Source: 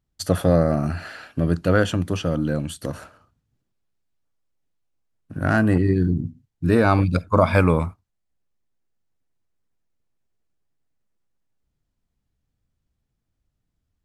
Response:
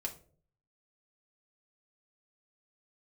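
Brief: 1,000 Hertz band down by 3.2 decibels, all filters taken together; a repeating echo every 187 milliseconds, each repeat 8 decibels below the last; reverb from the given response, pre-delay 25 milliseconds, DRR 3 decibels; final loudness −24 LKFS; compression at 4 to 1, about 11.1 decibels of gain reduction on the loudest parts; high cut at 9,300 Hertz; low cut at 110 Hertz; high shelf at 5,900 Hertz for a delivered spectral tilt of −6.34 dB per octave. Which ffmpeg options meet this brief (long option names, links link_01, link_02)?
-filter_complex "[0:a]highpass=110,lowpass=9300,equalizer=frequency=1000:width_type=o:gain=-4,highshelf=frequency=5900:gain=-8,acompressor=threshold=-27dB:ratio=4,aecho=1:1:187|374|561|748|935:0.398|0.159|0.0637|0.0255|0.0102,asplit=2[link_01][link_02];[1:a]atrim=start_sample=2205,adelay=25[link_03];[link_02][link_03]afir=irnorm=-1:irlink=0,volume=-3dB[link_04];[link_01][link_04]amix=inputs=2:normalize=0,volume=5.5dB"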